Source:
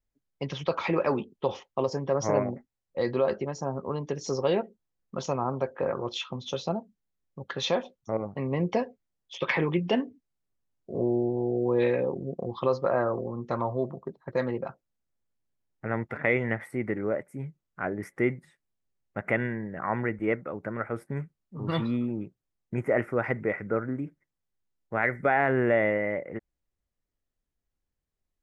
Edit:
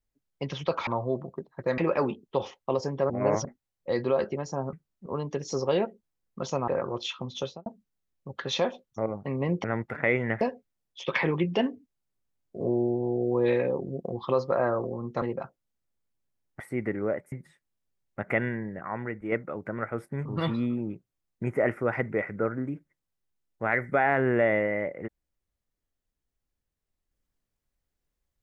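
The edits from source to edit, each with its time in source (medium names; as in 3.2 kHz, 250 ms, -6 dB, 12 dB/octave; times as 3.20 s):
2.19–2.54 s: reverse
5.44–5.79 s: delete
6.52–6.77 s: studio fade out
13.56–14.47 s: move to 0.87 s
15.85–16.62 s: move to 8.75 s
17.34–18.30 s: delete
19.77–20.30 s: gain -5 dB
21.23–21.56 s: move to 3.82 s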